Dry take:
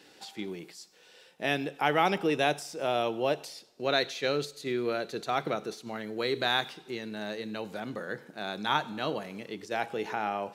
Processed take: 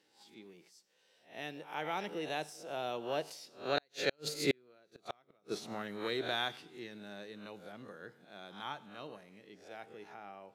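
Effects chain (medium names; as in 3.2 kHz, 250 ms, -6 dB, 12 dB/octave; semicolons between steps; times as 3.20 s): reverse spectral sustain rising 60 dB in 0.38 s; Doppler pass-by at 4.74 s, 13 m/s, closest 2.7 m; inverted gate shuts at -27 dBFS, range -42 dB; trim +9.5 dB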